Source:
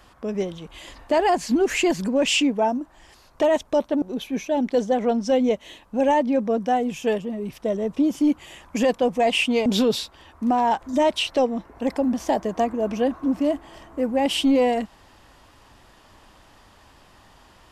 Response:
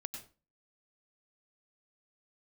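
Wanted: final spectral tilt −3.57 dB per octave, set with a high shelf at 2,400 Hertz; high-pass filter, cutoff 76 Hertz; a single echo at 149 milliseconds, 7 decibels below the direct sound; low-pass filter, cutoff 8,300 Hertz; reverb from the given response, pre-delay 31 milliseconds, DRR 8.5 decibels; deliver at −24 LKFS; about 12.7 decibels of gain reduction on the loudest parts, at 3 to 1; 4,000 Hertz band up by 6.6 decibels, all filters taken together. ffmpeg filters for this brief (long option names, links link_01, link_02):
-filter_complex "[0:a]highpass=76,lowpass=8300,highshelf=frequency=2400:gain=4,equalizer=frequency=4000:width_type=o:gain=6,acompressor=threshold=-33dB:ratio=3,aecho=1:1:149:0.447,asplit=2[link_01][link_02];[1:a]atrim=start_sample=2205,adelay=31[link_03];[link_02][link_03]afir=irnorm=-1:irlink=0,volume=-6.5dB[link_04];[link_01][link_04]amix=inputs=2:normalize=0,volume=7.5dB"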